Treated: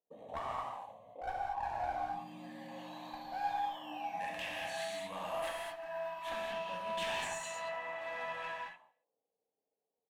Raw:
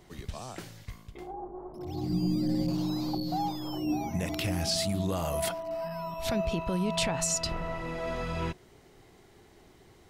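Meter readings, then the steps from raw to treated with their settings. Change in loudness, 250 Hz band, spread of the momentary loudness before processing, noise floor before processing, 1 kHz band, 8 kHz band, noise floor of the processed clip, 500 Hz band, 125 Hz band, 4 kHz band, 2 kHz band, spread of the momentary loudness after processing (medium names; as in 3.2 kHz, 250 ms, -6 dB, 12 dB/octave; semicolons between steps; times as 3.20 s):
-8.5 dB, -21.5 dB, 14 LU, -58 dBFS, 0.0 dB, -15.5 dB, under -85 dBFS, -7.0 dB, -24.5 dB, -9.5 dB, -0.5 dB, 11 LU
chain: high-pass 220 Hz 12 dB/octave; gate -52 dBFS, range -32 dB; peaking EQ 2 kHz -15 dB 0.66 oct; static phaser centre 1.4 kHz, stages 6; auto-wah 450–1700 Hz, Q 7, up, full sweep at -39 dBFS; one-sided clip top -56.5 dBFS; feedback delay 70 ms, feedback 57%, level -24 dB; gated-style reverb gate 260 ms flat, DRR -4 dB; trim +16 dB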